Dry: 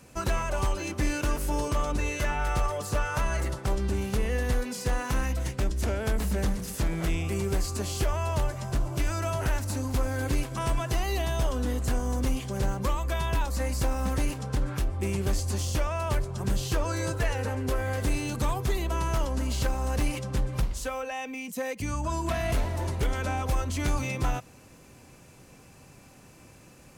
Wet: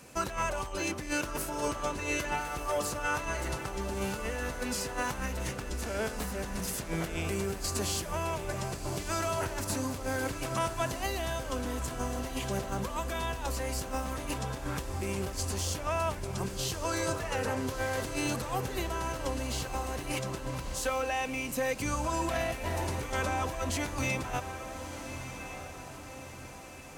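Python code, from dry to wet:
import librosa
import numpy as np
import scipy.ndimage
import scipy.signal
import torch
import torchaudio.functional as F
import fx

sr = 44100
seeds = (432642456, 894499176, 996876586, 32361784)

y = fx.over_compress(x, sr, threshold_db=-30.0, ratio=-1.0)
y = fx.low_shelf(y, sr, hz=220.0, db=-7.5)
y = fx.hum_notches(y, sr, base_hz=50, count=2)
y = fx.echo_diffused(y, sr, ms=1271, feedback_pct=50, wet_db=-9.0)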